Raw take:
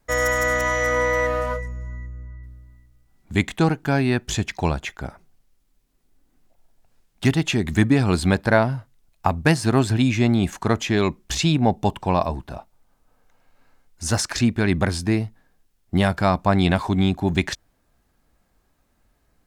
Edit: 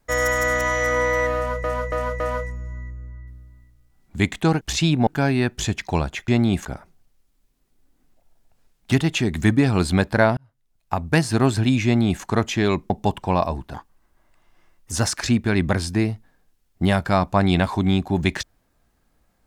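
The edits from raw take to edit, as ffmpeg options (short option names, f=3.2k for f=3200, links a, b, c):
-filter_complex "[0:a]asplit=12[a][b][c][d][e][f][g][h][i][j][k][l];[a]atrim=end=1.642[m];[b]atrim=start=1.358:end=1.642[n];[c]atrim=start=1.358:end=1.642[o];[d]atrim=start=1.358:end=3.772[p];[e]atrim=start=11.228:end=11.692[q];[f]atrim=start=3.768:end=4.982[r];[g]atrim=start=10.178:end=10.552[s];[h]atrim=start=4.978:end=8.7,asetpts=PTS-STARTPTS,afade=t=out:st=3.718:d=0.004:c=hsin[t];[i]atrim=start=8.7:end=11.232,asetpts=PTS-STARTPTS,afade=t=in:d=0.87[u];[j]atrim=start=11.688:end=12.534[v];[k]atrim=start=12.53:end=14.04,asetpts=PTS-STARTPTS,asetrate=56448,aresample=44100,atrim=end_sample=52024,asetpts=PTS-STARTPTS[w];[l]atrim=start=14.036[x];[m][n]acrossfade=d=0.004:c1=hsin:c2=hsin[y];[y][o]acrossfade=d=0.004:c1=hsin:c2=hsin[z];[z][p]acrossfade=d=0.004:c1=hsin:c2=hsin[aa];[aa][q]acrossfade=d=0.004:c1=hsin:c2=hsin[ab];[ab][r]acrossfade=d=0.004:c1=hsin:c2=hsin[ac];[ac][s]acrossfade=d=0.004:c1=hsin:c2=hsin[ad];[t][u]concat=n=2:v=0:a=1[ae];[ad][ae]acrossfade=d=0.004:c1=hsin:c2=hsin[af];[af][v]acrossfade=d=0.004:c1=hsin:c2=hsin[ag];[ag][w]acrossfade=d=0.004:c1=hsin:c2=hsin[ah];[ah][x]acrossfade=d=0.004:c1=hsin:c2=hsin"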